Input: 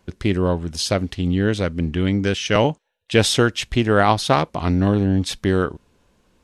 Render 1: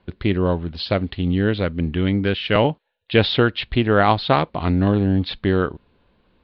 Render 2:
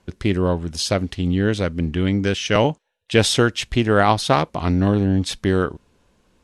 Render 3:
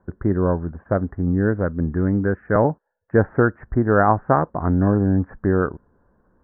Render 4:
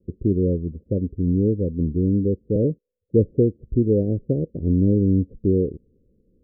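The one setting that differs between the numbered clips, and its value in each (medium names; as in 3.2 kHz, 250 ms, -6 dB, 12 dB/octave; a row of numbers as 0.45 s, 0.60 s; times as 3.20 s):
steep low-pass, frequency: 4.4 kHz, 12 kHz, 1.7 kHz, 510 Hz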